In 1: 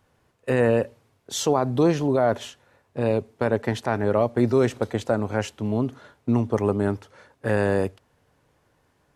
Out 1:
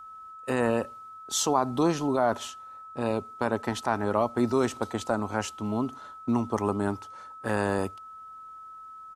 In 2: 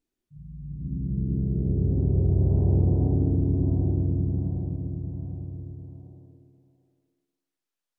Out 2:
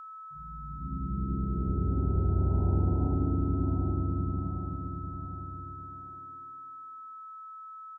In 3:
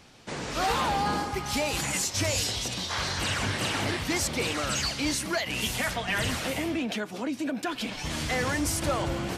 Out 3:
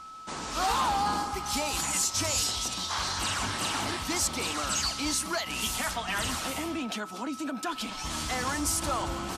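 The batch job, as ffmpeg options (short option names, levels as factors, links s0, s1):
-af "aresample=32000,aresample=44100,aeval=exprs='val(0)+0.00794*sin(2*PI*1300*n/s)':c=same,equalizer=f=125:t=o:w=1:g=-10,equalizer=f=500:t=o:w=1:g=-8,equalizer=f=1000:t=o:w=1:g=5,equalizer=f=2000:t=o:w=1:g=-6,equalizer=f=8000:t=o:w=1:g=3"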